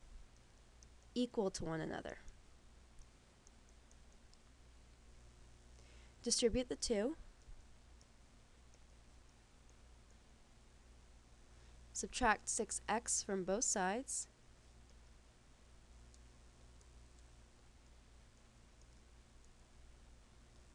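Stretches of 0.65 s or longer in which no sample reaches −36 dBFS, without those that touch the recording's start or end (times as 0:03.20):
0:02.12–0:06.27
0:07.08–0:11.97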